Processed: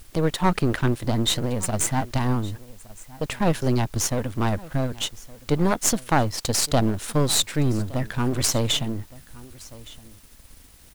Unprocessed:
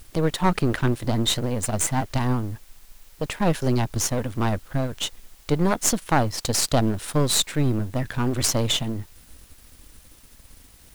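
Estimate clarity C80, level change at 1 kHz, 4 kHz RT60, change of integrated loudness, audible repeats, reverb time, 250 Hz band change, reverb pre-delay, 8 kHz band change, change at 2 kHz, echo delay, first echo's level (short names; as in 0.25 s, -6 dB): none, 0.0 dB, none, 0.0 dB, 1, none, 0.0 dB, none, 0.0 dB, 0.0 dB, 1.166 s, -21.0 dB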